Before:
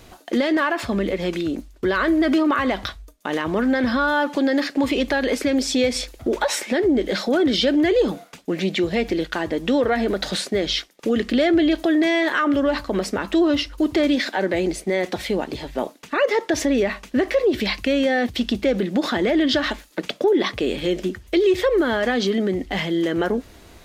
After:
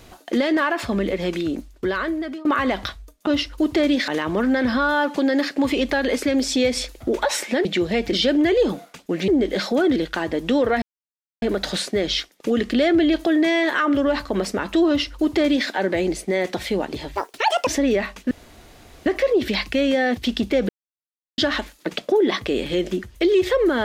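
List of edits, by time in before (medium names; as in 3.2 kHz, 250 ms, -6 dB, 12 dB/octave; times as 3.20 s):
1.70–2.45 s: fade out, to -22.5 dB
6.84–7.52 s: swap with 8.67–9.15 s
10.01 s: insert silence 0.60 s
13.47–14.28 s: copy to 3.27 s
15.74–16.54 s: speed 154%
17.18 s: insert room tone 0.75 s
18.81–19.50 s: mute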